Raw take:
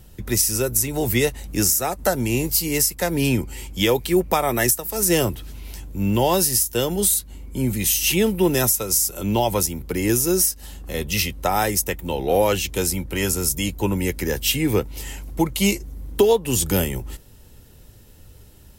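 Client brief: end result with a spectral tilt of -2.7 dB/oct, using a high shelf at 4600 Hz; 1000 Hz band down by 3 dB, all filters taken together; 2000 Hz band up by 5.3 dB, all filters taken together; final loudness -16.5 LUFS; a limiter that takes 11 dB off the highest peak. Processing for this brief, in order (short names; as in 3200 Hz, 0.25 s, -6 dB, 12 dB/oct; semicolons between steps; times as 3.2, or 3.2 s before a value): bell 1000 Hz -6 dB; bell 2000 Hz +6 dB; high shelf 4600 Hz +9 dB; gain +3 dB; limiter -5.5 dBFS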